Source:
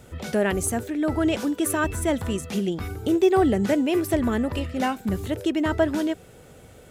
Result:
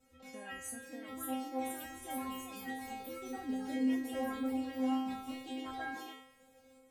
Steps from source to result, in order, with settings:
delay with pitch and tempo change per echo 623 ms, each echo +2 semitones, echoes 3
stiff-string resonator 260 Hz, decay 0.81 s, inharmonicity 0.002
level +1 dB

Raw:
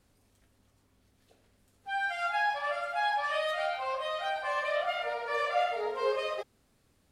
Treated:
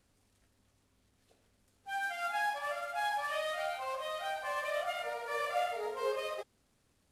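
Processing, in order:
variable-slope delta modulation 64 kbit/s
0:01.95–0:02.57: low shelf with overshoot 150 Hz −11.5 dB, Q 1.5
level −4.5 dB

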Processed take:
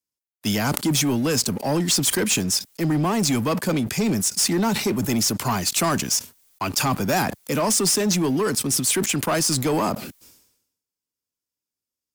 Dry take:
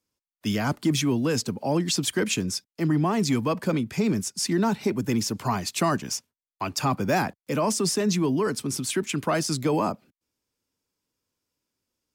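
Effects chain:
high-shelf EQ 5,000 Hz +12 dB
leveller curve on the samples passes 3
level that may fall only so fast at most 70 dB per second
level −7.5 dB

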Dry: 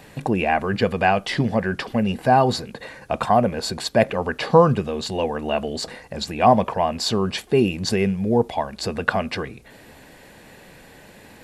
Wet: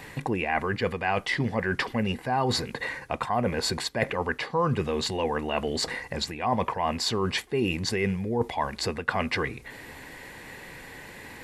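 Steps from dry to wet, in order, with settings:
thirty-one-band graphic EQ 200 Hz −6 dB, 630 Hz −6 dB, 1,000 Hz +4 dB, 2,000 Hz +8 dB
reversed playback
downward compressor 5 to 1, threshold −25 dBFS, peak gain reduction 15.5 dB
reversed playback
level +1.5 dB

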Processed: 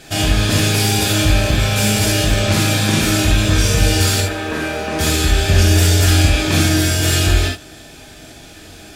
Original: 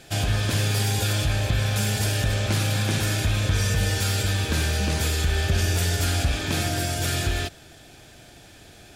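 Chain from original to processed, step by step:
0:04.20–0:04.99: three-way crossover with the lows and the highs turned down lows −14 dB, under 310 Hz, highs −14 dB, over 2,100 Hz
reverb whose tail is shaped and stops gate 100 ms flat, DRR −1.5 dB
level +5.5 dB

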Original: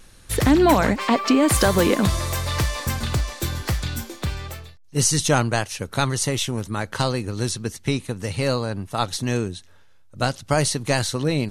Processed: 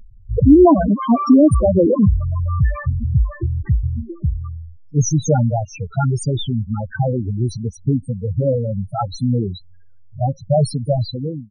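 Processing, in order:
fade-out on the ending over 0.56 s
spectral peaks only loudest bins 4
level +8 dB

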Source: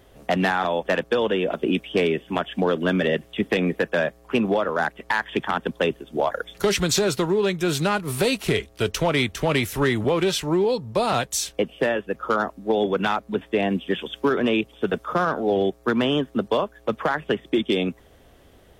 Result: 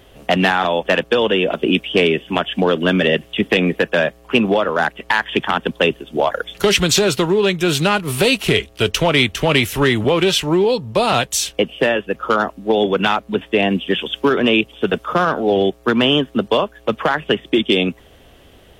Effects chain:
parametric band 2,900 Hz +7 dB 0.55 octaves
level +5.5 dB

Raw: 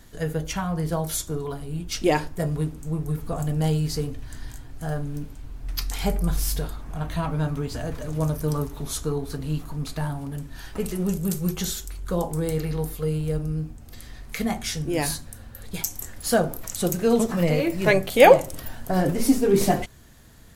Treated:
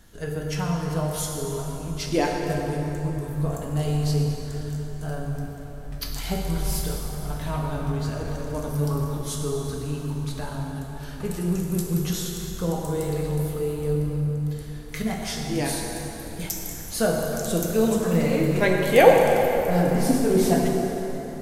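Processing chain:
dense smooth reverb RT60 3.8 s, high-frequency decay 0.65×, DRR −0.5 dB
wrong playback speed 25 fps video run at 24 fps
level −3.5 dB

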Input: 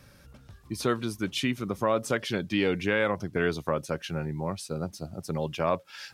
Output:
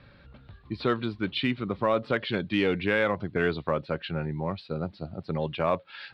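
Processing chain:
elliptic low-pass filter 4,200 Hz, stop band 40 dB
in parallel at −12 dB: gain into a clipping stage and back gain 23 dB

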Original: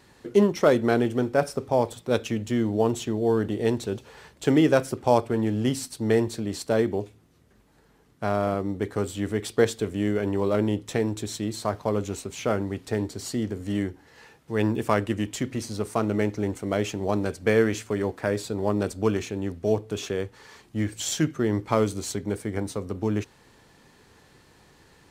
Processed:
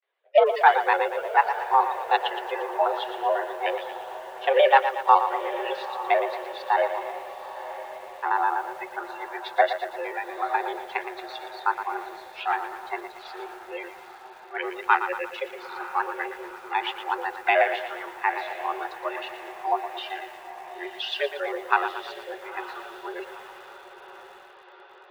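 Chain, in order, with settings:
pitch shifter gated in a rhythm −4 semitones, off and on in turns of 62 ms
noise gate with hold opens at −45 dBFS
spectral tilt +2 dB per octave
frequency shifter +53 Hz
in parallel at −4.5 dB: slack as between gear wheels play −24.5 dBFS
on the sum: noise reduction from a noise print of the clip's start 24 dB
single-sideband voice off tune +220 Hz 160–3,200 Hz
on a send: feedback delay with all-pass diffusion 939 ms, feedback 60%, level −13.5 dB
on the sum: feedback echo at a low word length 116 ms, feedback 55%, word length 8 bits, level −10 dB
level +1.5 dB

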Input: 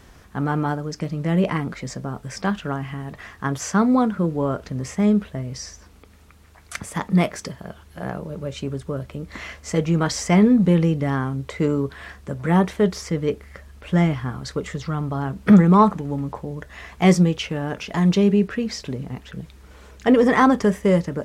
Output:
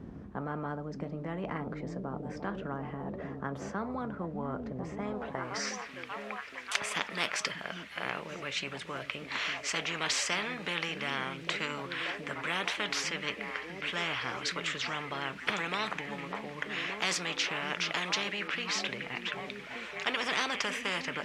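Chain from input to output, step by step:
echo through a band-pass that steps 587 ms, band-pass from 200 Hz, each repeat 0.7 octaves, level −6.5 dB
band-pass filter sweep 210 Hz → 2,400 Hz, 0:04.97–0:05.69
every bin compressed towards the loudest bin 4 to 1

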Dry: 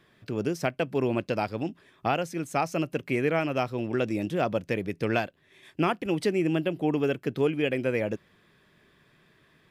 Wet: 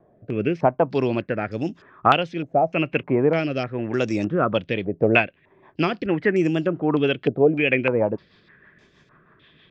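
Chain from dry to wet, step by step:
rotating-speaker cabinet horn 0.9 Hz, later 6.3 Hz, at 0:04.11
high-frequency loss of the air 70 metres
low-pass on a step sequencer 3.3 Hz 680–6,400 Hz
level +6.5 dB

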